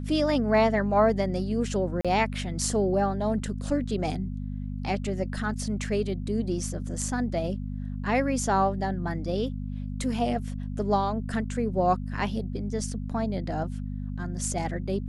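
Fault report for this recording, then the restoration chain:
hum 50 Hz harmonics 5 -33 dBFS
2.01–2.05 s: dropout 36 ms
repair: de-hum 50 Hz, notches 5; interpolate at 2.01 s, 36 ms

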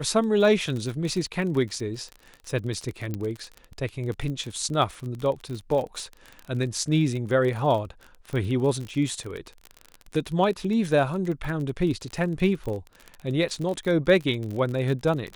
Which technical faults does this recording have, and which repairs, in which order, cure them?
crackle 36 per s -30 dBFS
3.14 s: pop -18 dBFS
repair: de-click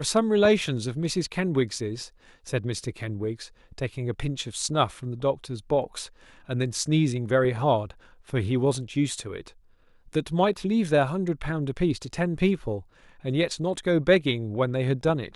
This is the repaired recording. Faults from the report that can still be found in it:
nothing left

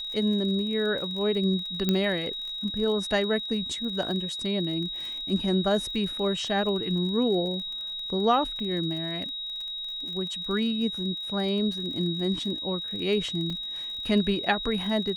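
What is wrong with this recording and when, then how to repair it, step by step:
crackle 34 per s -35 dBFS
whine 3.8 kHz -32 dBFS
1.89 s: pop -11 dBFS
13.50 s: dropout 3.1 ms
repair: de-click; band-stop 3.8 kHz, Q 30; interpolate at 13.50 s, 3.1 ms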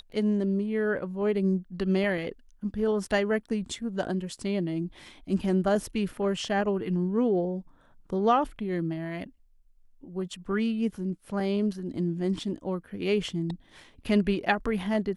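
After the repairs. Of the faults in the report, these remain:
nothing left

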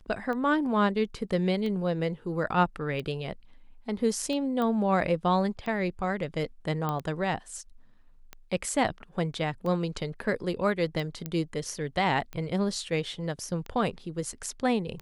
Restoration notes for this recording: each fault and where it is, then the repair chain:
tick 45 rpm -24 dBFS
4.62 s: pop -19 dBFS
6.89 s: pop -17 dBFS
11.26 s: pop -18 dBFS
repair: de-click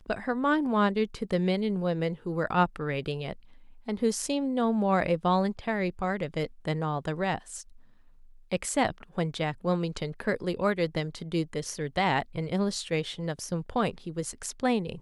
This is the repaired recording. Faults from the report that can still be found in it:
nothing left

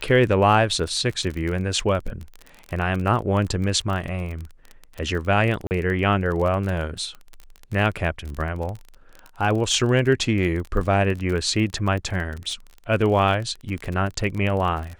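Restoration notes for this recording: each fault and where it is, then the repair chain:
crackle 30 per s -27 dBFS
5.67–5.71 s: dropout 39 ms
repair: de-click; interpolate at 5.67 s, 39 ms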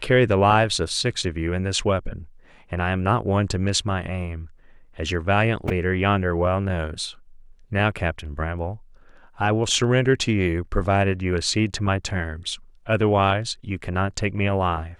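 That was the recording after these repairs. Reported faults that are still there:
nothing left

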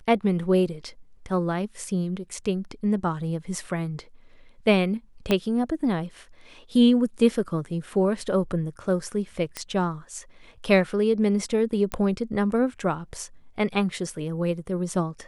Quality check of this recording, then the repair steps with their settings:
5.31 s: pop -9 dBFS
9.57 s: pop -14 dBFS
11.92 s: pop -13 dBFS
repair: de-click

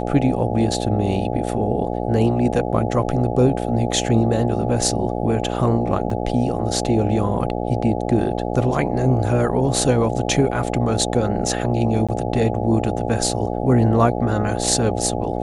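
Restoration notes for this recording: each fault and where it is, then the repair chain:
buzz 60 Hz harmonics 14 -24 dBFS
6.10 s: dropout 3.2 ms
12.07–12.09 s: dropout 16 ms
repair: de-hum 60 Hz, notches 14; interpolate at 6.10 s, 3.2 ms; interpolate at 12.07 s, 16 ms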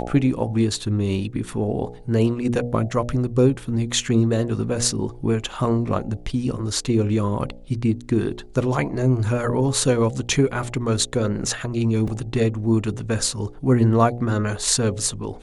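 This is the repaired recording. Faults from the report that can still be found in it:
nothing left

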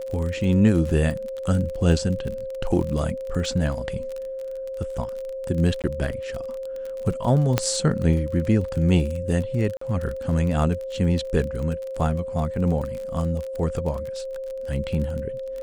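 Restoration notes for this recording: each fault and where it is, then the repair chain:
crackle 32 per s -29 dBFS
whine 530 Hz -29 dBFS
5.82–5.84 s: dropout 18 ms
7.58 s: pop -5 dBFS
9.77–9.81 s: dropout 44 ms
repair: de-click; band-stop 530 Hz, Q 30; interpolate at 5.82 s, 18 ms; interpolate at 9.77 s, 44 ms

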